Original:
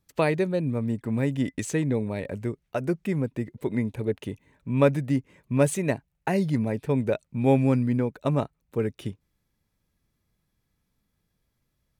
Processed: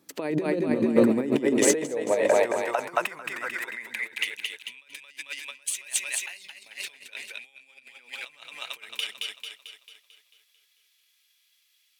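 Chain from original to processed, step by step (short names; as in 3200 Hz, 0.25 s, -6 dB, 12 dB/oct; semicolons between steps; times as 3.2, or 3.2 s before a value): split-band echo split 300 Hz, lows 0.116 s, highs 0.222 s, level -4 dB; negative-ratio compressor -29 dBFS, ratio -0.5; high-pass sweep 290 Hz -> 2900 Hz, 1.08–4.63; gain +7 dB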